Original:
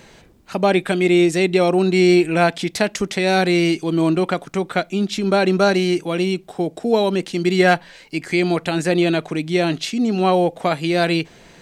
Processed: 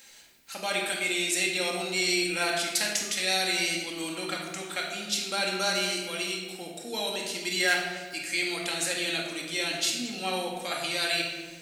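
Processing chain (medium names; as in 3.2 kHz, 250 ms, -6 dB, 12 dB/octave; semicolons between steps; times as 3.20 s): pre-emphasis filter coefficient 0.97; band-stop 1.1 kHz, Q 14; simulated room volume 1100 m³, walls mixed, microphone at 2.2 m; trim +1.5 dB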